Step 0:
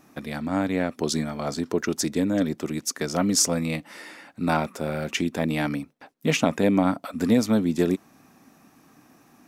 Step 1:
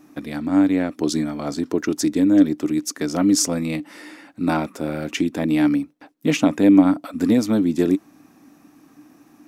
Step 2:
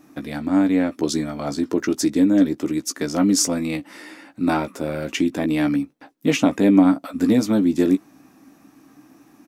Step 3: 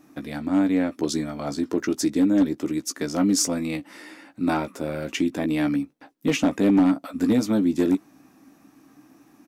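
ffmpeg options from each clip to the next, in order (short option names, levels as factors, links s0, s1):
-af "equalizer=f=300:w=5.5:g=13.5"
-filter_complex "[0:a]asplit=2[s0][s1];[s1]adelay=15,volume=0.398[s2];[s0][s2]amix=inputs=2:normalize=0"
-af "asoftclip=type=hard:threshold=0.316,volume=0.708"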